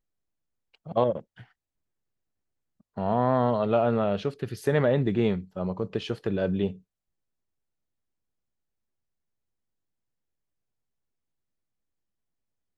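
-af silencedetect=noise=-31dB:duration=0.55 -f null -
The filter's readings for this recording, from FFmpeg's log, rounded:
silence_start: 0.00
silence_end: 0.90 | silence_duration: 0.90
silence_start: 1.19
silence_end: 2.98 | silence_duration: 1.79
silence_start: 6.71
silence_end: 12.78 | silence_duration: 6.07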